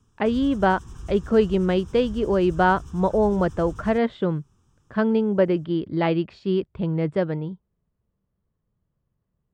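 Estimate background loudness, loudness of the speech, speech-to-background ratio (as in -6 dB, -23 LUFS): -41.0 LUFS, -23.0 LUFS, 18.0 dB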